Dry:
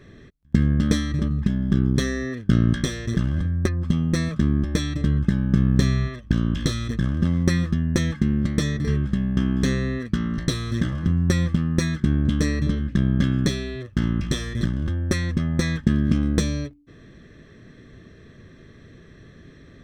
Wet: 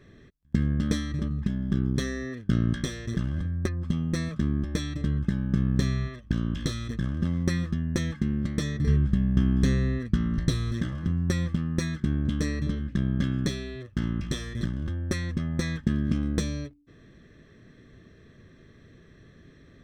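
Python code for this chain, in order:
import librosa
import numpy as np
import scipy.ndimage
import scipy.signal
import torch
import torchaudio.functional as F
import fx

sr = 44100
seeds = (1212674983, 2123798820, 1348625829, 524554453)

y = fx.low_shelf(x, sr, hz=160.0, db=10.0, at=(8.79, 10.72))
y = y * 10.0 ** (-6.0 / 20.0)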